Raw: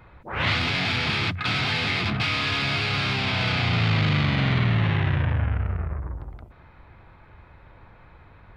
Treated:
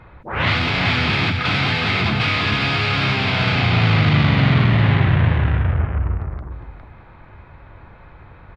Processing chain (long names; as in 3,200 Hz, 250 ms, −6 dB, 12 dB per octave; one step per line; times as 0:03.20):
low-pass filter 3,200 Hz 6 dB per octave
on a send: single-tap delay 408 ms −5.5 dB
on the sum: level +6 dB